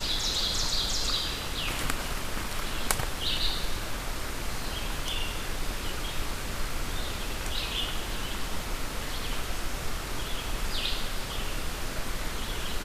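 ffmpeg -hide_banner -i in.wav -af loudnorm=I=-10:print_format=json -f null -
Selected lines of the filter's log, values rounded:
"input_i" : "-32.1",
"input_tp" : "-3.3",
"input_lra" : "3.1",
"input_thresh" : "-42.1",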